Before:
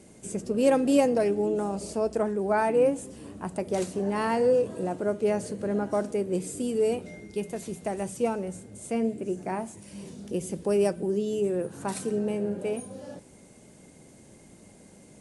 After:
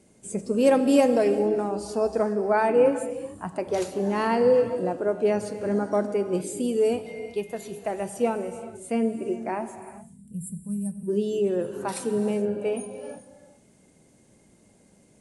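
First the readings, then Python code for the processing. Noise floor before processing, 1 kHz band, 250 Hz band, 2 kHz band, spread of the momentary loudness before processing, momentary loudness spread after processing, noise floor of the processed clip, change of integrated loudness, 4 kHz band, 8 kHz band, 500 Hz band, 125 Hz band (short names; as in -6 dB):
-53 dBFS, +3.0 dB, +2.0 dB, +2.5 dB, 13 LU, 15 LU, -59 dBFS, +2.5 dB, +2.0 dB, 0.0 dB, +2.5 dB, +0.5 dB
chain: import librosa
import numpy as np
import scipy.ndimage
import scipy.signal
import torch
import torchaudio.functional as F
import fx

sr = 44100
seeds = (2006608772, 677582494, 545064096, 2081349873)

y = fx.spec_box(x, sr, start_s=9.8, length_s=1.28, low_hz=240.0, high_hz=7200.0, gain_db=-22)
y = fx.noise_reduce_blind(y, sr, reduce_db=9)
y = fx.rev_gated(y, sr, seeds[0], gate_ms=440, shape='flat', drr_db=10.0)
y = F.gain(torch.from_numpy(y), 2.5).numpy()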